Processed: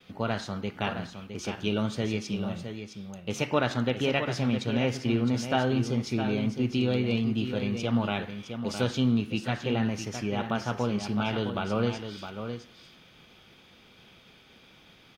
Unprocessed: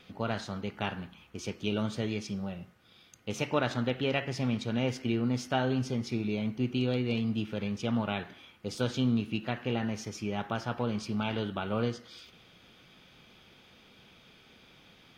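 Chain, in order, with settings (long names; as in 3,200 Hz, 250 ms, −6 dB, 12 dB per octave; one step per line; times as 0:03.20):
downward expander −55 dBFS
single-tap delay 662 ms −8.5 dB
level +3 dB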